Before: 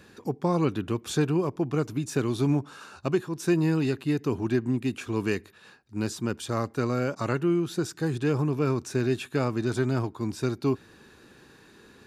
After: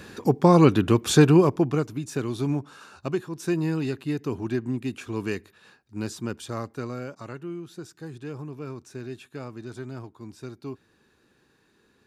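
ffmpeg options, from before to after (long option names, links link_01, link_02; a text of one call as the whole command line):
ffmpeg -i in.wav -af "volume=9dB,afade=type=out:start_time=1.39:duration=0.5:silence=0.281838,afade=type=out:start_time=6.27:duration=1.01:silence=0.354813" out.wav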